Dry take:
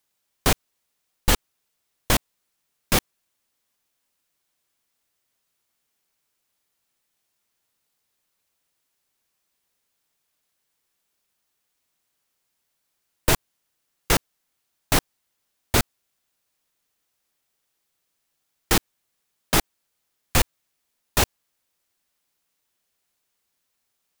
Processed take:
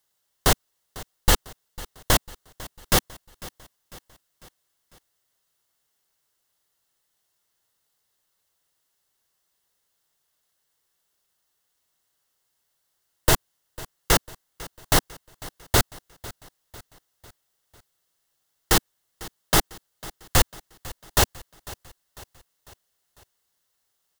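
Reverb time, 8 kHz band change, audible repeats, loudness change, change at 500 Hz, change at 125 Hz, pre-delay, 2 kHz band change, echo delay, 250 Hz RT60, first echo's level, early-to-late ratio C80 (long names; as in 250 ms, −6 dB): no reverb audible, +1.5 dB, 3, +1.0 dB, +1.0 dB, +1.0 dB, no reverb audible, 0.0 dB, 499 ms, no reverb audible, −19.5 dB, no reverb audible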